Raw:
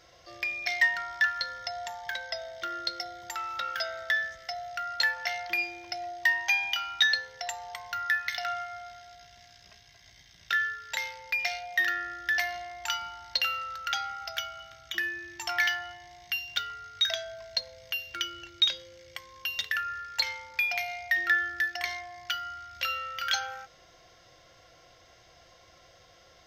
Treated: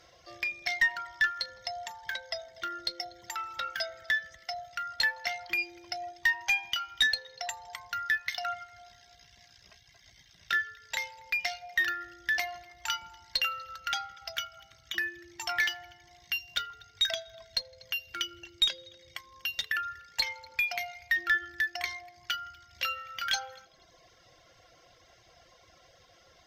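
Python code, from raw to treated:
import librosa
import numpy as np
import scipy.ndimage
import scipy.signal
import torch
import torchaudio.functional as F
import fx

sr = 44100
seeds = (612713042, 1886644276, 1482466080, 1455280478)

y = fx.echo_heads(x, sr, ms=81, heads='all three', feedback_pct=41, wet_db=-22.0)
y = fx.tube_stage(y, sr, drive_db=15.0, bias=0.2)
y = fx.dereverb_blind(y, sr, rt60_s=0.86)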